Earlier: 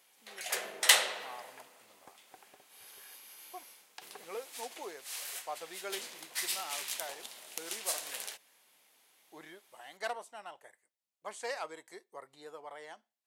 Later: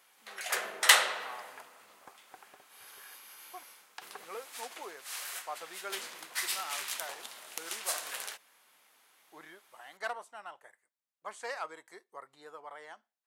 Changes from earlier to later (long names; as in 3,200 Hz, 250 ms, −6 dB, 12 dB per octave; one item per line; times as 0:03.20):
speech −3.5 dB
master: add parametric band 1,300 Hz +8 dB 1.1 octaves